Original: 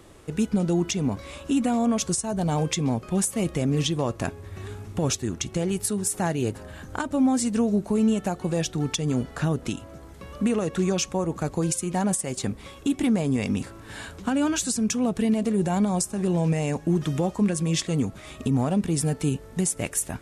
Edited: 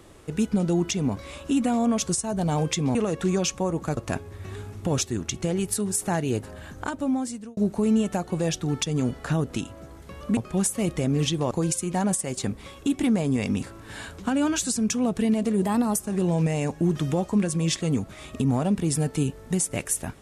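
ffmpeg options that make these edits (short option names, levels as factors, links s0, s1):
-filter_complex "[0:a]asplit=8[s0][s1][s2][s3][s4][s5][s6][s7];[s0]atrim=end=2.952[s8];[s1]atrim=start=10.488:end=11.512[s9];[s2]atrim=start=4.088:end=7.69,asetpts=PTS-STARTPTS,afade=t=out:st=2.542:d=1.06:c=qsin[s10];[s3]atrim=start=7.69:end=10.492,asetpts=PTS-STARTPTS,afade=t=in:d=0.004:c=hsin[s11];[s4]atrim=start=2.948:end=4.092[s12];[s5]atrim=start=11.508:end=15.624[s13];[s6]atrim=start=15.62:end=16.06,asetpts=PTS-STARTPTS,asetrate=51156,aresample=44100[s14];[s7]atrim=start=16.056[s15];[s8][s9]acrossfade=d=0.004:c1=hsin:c2=hsin[s16];[s10][s11]concat=n=2:v=0:a=1[s17];[s16][s17]acrossfade=d=0.004:c1=hsin:c2=hsin[s18];[s18][s12]acrossfade=d=0.004:c1=hsin:c2=hsin[s19];[s19][s13]acrossfade=d=0.004:c1=hsin:c2=hsin[s20];[s20][s14]acrossfade=d=0.004:c1=hsin:c2=hsin[s21];[s21][s15]acrossfade=d=0.004:c1=hsin:c2=hsin"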